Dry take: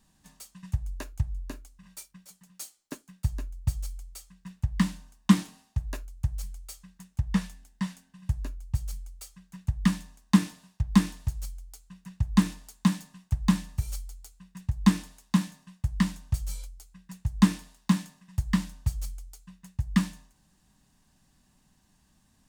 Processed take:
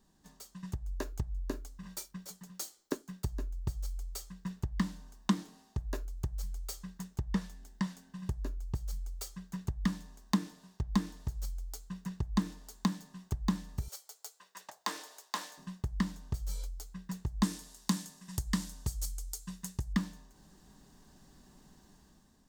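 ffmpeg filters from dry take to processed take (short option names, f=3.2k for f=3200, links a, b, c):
-filter_complex "[0:a]asettb=1/sr,asplit=3[a][b][c];[a]atrim=end=13.884[d];[b]atrim=start=13.88:end=15.58,asetpts=PTS-STARTPTS,afade=t=in:d=0.004:c=qsin,afade=t=out:st=1.696:d=0.004:c=qsin,highpass=f=480:w=0.5412,highpass=f=480:w=1.3066[e];[c]atrim=start=15.576[f];[d][e]acrossfade=d=0.004:c1=hsin:c2=qsin[g];[g][f]acrossfade=d=0.004:c1=qsin:c2=hsin,asettb=1/sr,asplit=3[h][i][j];[h]atrim=end=17.434[k];[i]atrim=start=17.43:end=19.93,asetpts=PTS-STARTPTS,afade=t=in:d=0.004:c=qsin,afade=t=out:st=2.496:d=0.004:c=qsin,equalizer=f=9.6k:t=o:w=2.1:g=13.5[l];[j]atrim=start=19.926[m];[k][l]acrossfade=d=0.004:c1=hsin:c2=qsin[n];[n][m]acrossfade=d=0.004:c1=qsin:c2=hsin,acompressor=threshold=-42dB:ratio=2.5,equalizer=f=100:t=o:w=0.67:g=-6,equalizer=f=400:t=o:w=0.67:g=8,equalizer=f=2.5k:t=o:w=0.67:g=-7,equalizer=f=10k:t=o:w=0.67:g=-7,dynaudnorm=f=190:g=7:m=9.5dB,volume=-2.5dB"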